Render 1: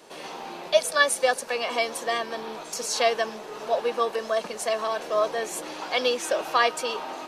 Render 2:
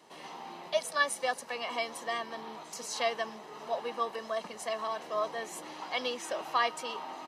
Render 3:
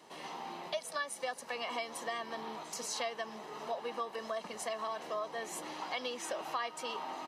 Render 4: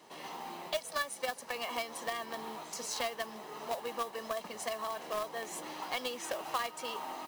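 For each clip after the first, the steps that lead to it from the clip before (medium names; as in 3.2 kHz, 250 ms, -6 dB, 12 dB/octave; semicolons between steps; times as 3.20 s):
high-pass 70 Hz; treble shelf 5.2 kHz -4.5 dB; comb 1 ms, depth 39%; trim -7.5 dB
compression 4:1, threshold -36 dBFS, peak gain reduction 12.5 dB; trim +1 dB
in parallel at -8.5 dB: bit crusher 5-bit; on the sum: modulation noise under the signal 16 dB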